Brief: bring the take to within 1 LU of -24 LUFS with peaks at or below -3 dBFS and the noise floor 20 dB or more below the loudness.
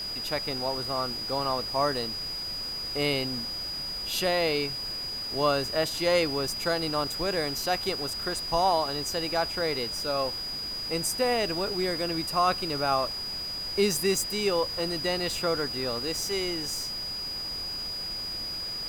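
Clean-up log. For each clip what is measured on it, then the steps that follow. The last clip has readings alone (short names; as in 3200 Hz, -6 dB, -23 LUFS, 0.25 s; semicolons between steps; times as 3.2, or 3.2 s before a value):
steady tone 4900 Hz; tone level -32 dBFS; noise floor -35 dBFS; noise floor target -48 dBFS; loudness -28.0 LUFS; peak -12.5 dBFS; loudness target -24.0 LUFS
-> notch 4900 Hz, Q 30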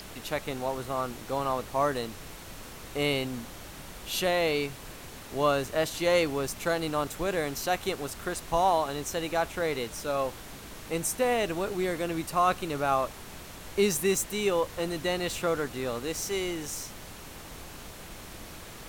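steady tone none; noise floor -45 dBFS; noise floor target -50 dBFS
-> noise print and reduce 6 dB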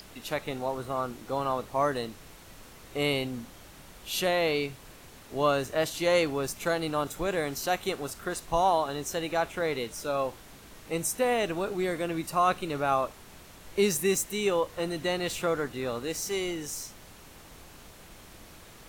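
noise floor -51 dBFS; loudness -29.5 LUFS; peak -13.5 dBFS; loudness target -24.0 LUFS
-> gain +5.5 dB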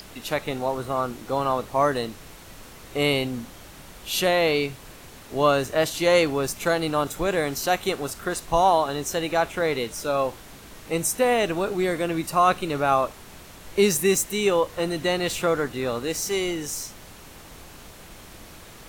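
loudness -24.0 LUFS; peak -8.0 dBFS; noise floor -45 dBFS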